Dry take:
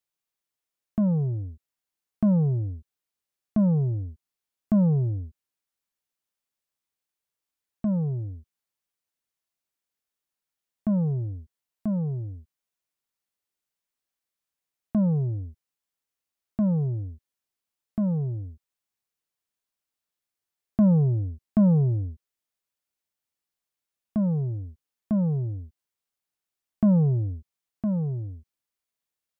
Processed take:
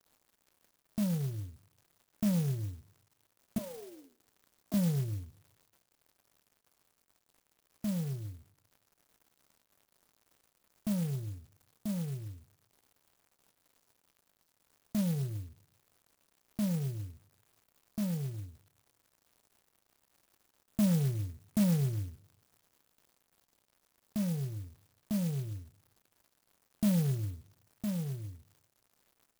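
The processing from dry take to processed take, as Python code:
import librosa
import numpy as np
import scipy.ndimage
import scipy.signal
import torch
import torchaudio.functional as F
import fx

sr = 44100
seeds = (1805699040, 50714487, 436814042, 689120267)

y = fx.steep_highpass(x, sr, hz=270.0, slope=48, at=(3.58, 4.74))
y = fx.dmg_crackle(y, sr, seeds[0], per_s=280.0, level_db=-44.0)
y = fx.doubler(y, sr, ms=29.0, db=-12.5)
y = fx.rev_plate(y, sr, seeds[1], rt60_s=0.94, hf_ratio=0.85, predelay_ms=0, drr_db=19.5)
y = fx.clock_jitter(y, sr, seeds[2], jitter_ms=0.12)
y = F.gain(torch.from_numpy(y), -9.0).numpy()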